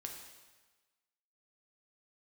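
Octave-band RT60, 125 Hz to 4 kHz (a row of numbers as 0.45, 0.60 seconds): 1.2, 1.2, 1.3, 1.3, 1.3, 1.2 seconds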